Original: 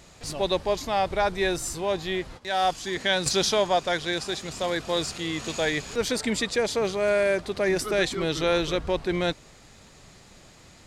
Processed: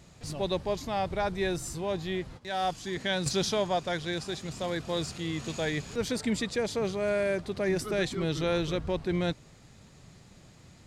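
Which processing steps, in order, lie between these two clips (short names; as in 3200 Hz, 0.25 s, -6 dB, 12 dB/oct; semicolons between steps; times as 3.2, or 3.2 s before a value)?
bell 130 Hz +9.5 dB 2.1 oct; gain -7 dB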